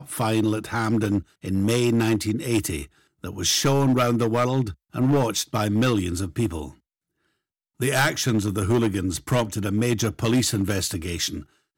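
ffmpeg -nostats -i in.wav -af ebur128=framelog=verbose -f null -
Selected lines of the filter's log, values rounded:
Integrated loudness:
  I:         -23.3 LUFS
  Threshold: -33.6 LUFS
Loudness range:
  LRA:         3.0 LU
  Threshold: -43.7 LUFS
  LRA low:   -25.3 LUFS
  LRA high:  -22.3 LUFS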